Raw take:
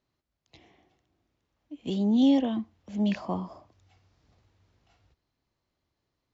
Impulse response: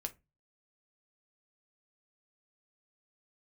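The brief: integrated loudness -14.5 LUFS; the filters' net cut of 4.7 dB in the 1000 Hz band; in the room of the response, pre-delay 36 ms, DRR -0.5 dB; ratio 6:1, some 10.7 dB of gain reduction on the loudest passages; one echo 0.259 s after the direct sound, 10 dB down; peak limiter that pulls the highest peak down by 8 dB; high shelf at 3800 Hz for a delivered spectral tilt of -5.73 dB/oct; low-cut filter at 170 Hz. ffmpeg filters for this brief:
-filter_complex "[0:a]highpass=170,equalizer=f=1k:t=o:g=-7,highshelf=f=3.8k:g=6.5,acompressor=threshold=-30dB:ratio=6,alimiter=level_in=8.5dB:limit=-24dB:level=0:latency=1,volume=-8.5dB,aecho=1:1:259:0.316,asplit=2[a][b];[1:a]atrim=start_sample=2205,adelay=36[c];[b][c]afir=irnorm=-1:irlink=0,volume=2dB[d];[a][d]amix=inputs=2:normalize=0,volume=23.5dB"

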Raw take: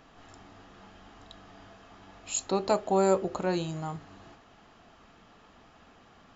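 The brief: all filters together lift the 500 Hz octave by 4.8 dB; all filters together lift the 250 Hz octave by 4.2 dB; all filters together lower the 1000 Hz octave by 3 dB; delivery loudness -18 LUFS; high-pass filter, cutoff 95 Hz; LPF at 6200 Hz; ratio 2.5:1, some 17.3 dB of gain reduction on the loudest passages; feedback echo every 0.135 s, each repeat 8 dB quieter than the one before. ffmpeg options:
-af "highpass=95,lowpass=6.2k,equalizer=f=250:t=o:g=4.5,equalizer=f=500:t=o:g=7,equalizer=f=1k:t=o:g=-8,acompressor=threshold=-43dB:ratio=2.5,aecho=1:1:135|270|405|540|675:0.398|0.159|0.0637|0.0255|0.0102,volume=24.5dB"

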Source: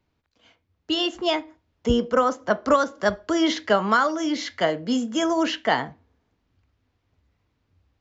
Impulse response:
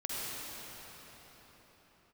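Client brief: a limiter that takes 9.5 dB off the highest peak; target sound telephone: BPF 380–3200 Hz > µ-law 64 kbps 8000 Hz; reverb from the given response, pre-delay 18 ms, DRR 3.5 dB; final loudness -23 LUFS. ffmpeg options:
-filter_complex "[0:a]alimiter=limit=-17dB:level=0:latency=1,asplit=2[a][b];[1:a]atrim=start_sample=2205,adelay=18[c];[b][c]afir=irnorm=-1:irlink=0,volume=-8.5dB[d];[a][d]amix=inputs=2:normalize=0,highpass=380,lowpass=3.2k,volume=5.5dB" -ar 8000 -c:a pcm_mulaw

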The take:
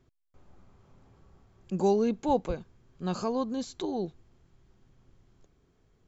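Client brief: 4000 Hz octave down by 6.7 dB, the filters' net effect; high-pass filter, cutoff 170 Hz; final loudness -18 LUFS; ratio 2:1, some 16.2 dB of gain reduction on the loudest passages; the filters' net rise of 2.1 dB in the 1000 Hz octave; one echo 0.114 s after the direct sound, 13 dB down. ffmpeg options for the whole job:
-af "highpass=170,equalizer=f=1k:t=o:g=3,equalizer=f=4k:t=o:g=-8,acompressor=threshold=-50dB:ratio=2,aecho=1:1:114:0.224,volume=26dB"

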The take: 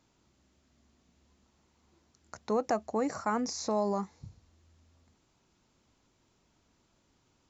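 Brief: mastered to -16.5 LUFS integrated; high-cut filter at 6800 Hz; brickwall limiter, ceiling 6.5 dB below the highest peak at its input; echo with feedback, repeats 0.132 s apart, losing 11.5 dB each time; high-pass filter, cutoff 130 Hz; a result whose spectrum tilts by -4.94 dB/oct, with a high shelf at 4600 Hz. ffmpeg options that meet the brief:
-af "highpass=130,lowpass=6.8k,highshelf=f=4.6k:g=-7,alimiter=limit=-22dB:level=0:latency=1,aecho=1:1:132|264|396:0.266|0.0718|0.0194,volume=18dB"

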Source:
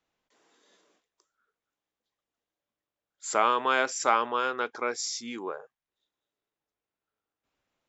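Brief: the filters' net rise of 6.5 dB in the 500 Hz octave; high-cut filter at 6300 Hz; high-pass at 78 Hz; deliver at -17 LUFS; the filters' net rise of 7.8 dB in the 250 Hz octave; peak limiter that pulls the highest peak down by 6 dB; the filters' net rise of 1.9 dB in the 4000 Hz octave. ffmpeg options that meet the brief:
-af "highpass=78,lowpass=6.3k,equalizer=f=250:t=o:g=7.5,equalizer=f=500:t=o:g=6,equalizer=f=4k:t=o:g=3.5,volume=9.5dB,alimiter=limit=-2.5dB:level=0:latency=1"

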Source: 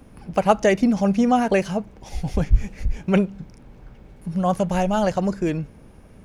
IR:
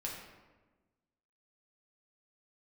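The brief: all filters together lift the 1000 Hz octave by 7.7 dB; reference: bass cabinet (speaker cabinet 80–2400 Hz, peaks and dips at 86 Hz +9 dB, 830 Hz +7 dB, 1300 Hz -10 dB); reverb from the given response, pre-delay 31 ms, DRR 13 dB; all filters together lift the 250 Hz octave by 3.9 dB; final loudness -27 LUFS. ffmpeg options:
-filter_complex "[0:a]equalizer=f=250:t=o:g=4.5,equalizer=f=1k:t=o:g=5,asplit=2[a][b];[1:a]atrim=start_sample=2205,adelay=31[c];[b][c]afir=irnorm=-1:irlink=0,volume=-13.5dB[d];[a][d]amix=inputs=2:normalize=0,highpass=f=80:w=0.5412,highpass=f=80:w=1.3066,equalizer=f=86:t=q:w=4:g=9,equalizer=f=830:t=q:w=4:g=7,equalizer=f=1.3k:t=q:w=4:g=-10,lowpass=f=2.4k:w=0.5412,lowpass=f=2.4k:w=1.3066,volume=-9.5dB"

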